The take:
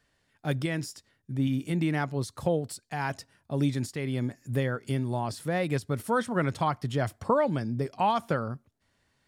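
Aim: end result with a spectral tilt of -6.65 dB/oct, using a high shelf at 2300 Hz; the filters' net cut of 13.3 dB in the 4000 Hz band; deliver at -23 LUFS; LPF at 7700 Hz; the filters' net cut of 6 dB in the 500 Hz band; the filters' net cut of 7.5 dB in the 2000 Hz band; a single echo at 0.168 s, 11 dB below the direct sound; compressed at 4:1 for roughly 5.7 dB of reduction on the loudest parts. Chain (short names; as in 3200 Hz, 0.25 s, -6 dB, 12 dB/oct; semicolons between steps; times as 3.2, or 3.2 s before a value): LPF 7700 Hz; bell 500 Hz -6.5 dB; bell 2000 Hz -4 dB; high shelf 2300 Hz -8.5 dB; bell 4000 Hz -8 dB; compressor 4:1, threshold -30 dBFS; echo 0.168 s -11 dB; gain +13 dB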